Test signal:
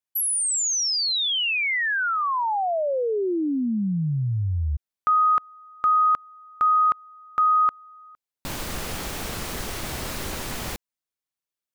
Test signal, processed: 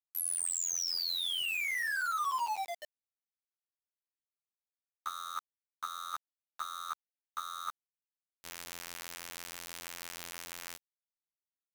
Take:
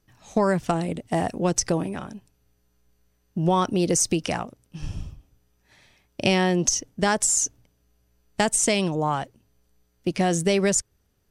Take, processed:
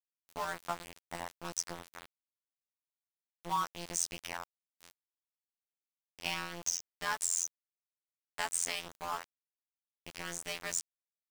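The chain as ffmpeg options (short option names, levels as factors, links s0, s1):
-af "afftfilt=real='hypot(re,im)*cos(PI*b)':imag='0':win_size=2048:overlap=0.75,lowshelf=f=650:t=q:w=1.5:g=-11,aeval=exprs='val(0)*gte(abs(val(0)),0.0316)':c=same,volume=0.422"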